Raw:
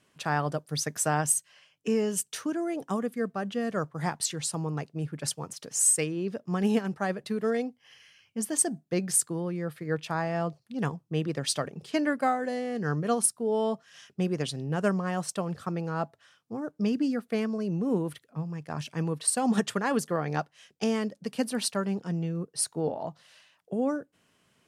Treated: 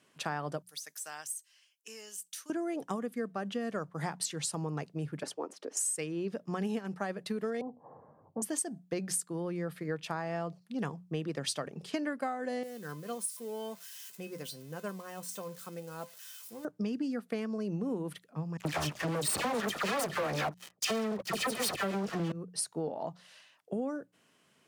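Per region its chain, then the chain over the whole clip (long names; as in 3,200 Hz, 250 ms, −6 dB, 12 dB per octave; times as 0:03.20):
0:00.62–0:02.50: de-essing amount 80% + first difference
0:05.23–0:05.77: Butterworth high-pass 300 Hz + spectral tilt −4.5 dB per octave
0:07.61–0:08.42: Butterworth low-pass 990 Hz 48 dB per octave + every bin compressed towards the loudest bin 2 to 1
0:12.63–0:16.65: spike at every zero crossing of −29 dBFS + tuned comb filter 510 Hz, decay 0.19 s, mix 80%
0:18.57–0:22.32: lower of the sound and its delayed copy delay 1.6 ms + all-pass dispersion lows, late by 81 ms, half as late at 1,700 Hz + leveller curve on the samples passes 5
whole clip: high-pass filter 140 Hz; mains-hum notches 60/120/180 Hz; downward compressor, threshold −31 dBFS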